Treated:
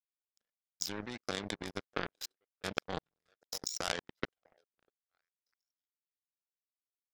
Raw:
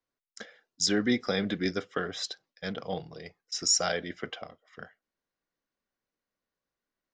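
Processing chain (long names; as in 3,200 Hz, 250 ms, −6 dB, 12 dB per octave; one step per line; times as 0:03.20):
output level in coarse steps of 18 dB
echo through a band-pass that steps 646 ms, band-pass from 570 Hz, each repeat 1.4 octaves, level −8 dB
power curve on the samples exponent 3
level +13 dB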